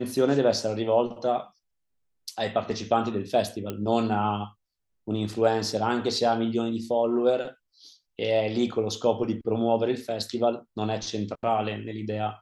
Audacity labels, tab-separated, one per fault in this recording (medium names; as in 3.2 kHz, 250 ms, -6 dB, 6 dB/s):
3.700000	3.700000	pop -17 dBFS